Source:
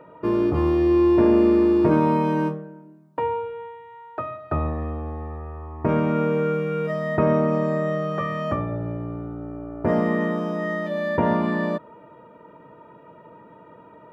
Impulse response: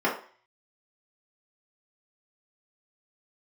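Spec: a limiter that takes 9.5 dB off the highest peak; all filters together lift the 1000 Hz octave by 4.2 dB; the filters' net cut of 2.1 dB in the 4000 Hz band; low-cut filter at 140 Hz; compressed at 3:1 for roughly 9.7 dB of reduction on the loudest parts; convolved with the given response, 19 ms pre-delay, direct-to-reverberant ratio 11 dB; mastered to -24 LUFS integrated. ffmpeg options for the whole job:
-filter_complex "[0:a]highpass=140,equalizer=f=1k:t=o:g=5,equalizer=f=4k:t=o:g=-3.5,acompressor=threshold=-27dB:ratio=3,alimiter=limit=-22.5dB:level=0:latency=1,asplit=2[a][b];[1:a]atrim=start_sample=2205,adelay=19[c];[b][c]afir=irnorm=-1:irlink=0,volume=-25.5dB[d];[a][d]amix=inputs=2:normalize=0,volume=7.5dB"

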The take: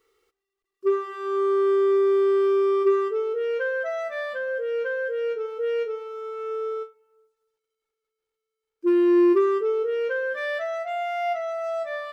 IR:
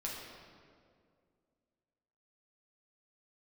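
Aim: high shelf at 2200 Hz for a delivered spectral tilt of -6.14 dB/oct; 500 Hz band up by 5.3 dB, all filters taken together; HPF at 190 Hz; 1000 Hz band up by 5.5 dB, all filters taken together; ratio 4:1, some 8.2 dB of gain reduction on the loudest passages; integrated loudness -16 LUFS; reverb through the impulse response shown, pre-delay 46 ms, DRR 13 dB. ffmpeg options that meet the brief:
-filter_complex "[0:a]highpass=190,equalizer=f=500:t=o:g=6.5,equalizer=f=1k:t=o:g=6.5,highshelf=f=2.2k:g=-3.5,acompressor=threshold=-21dB:ratio=4,asplit=2[a][b];[1:a]atrim=start_sample=2205,adelay=46[c];[b][c]afir=irnorm=-1:irlink=0,volume=-14.5dB[d];[a][d]amix=inputs=2:normalize=0,volume=7dB"

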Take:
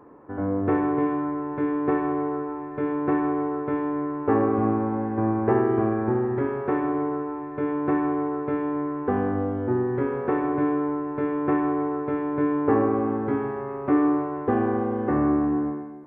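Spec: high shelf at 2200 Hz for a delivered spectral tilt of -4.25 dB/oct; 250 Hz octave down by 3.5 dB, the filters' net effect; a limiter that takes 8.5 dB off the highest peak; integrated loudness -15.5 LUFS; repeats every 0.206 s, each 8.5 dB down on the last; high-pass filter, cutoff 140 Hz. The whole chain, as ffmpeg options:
-af "highpass=140,equalizer=f=250:t=o:g=-4,highshelf=f=2.2k:g=-7.5,alimiter=limit=-19dB:level=0:latency=1,aecho=1:1:206|412|618|824:0.376|0.143|0.0543|0.0206,volume=13.5dB"

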